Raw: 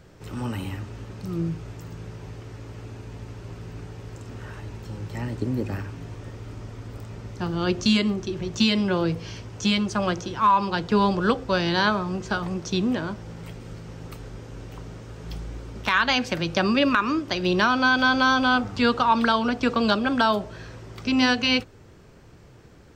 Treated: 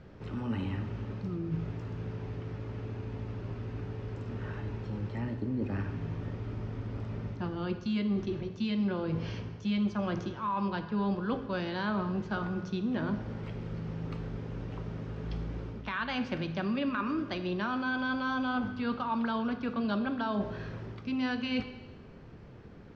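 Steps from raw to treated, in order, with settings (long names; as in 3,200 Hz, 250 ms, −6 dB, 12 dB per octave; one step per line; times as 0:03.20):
parametric band 220 Hz +5 dB 0.58 octaves
reversed playback
downward compressor 6 to 1, threshold −28 dBFS, peak gain reduction 15 dB
reversed playback
high-frequency loss of the air 210 metres
convolution reverb RT60 1.2 s, pre-delay 12 ms, DRR 9 dB
level −1.5 dB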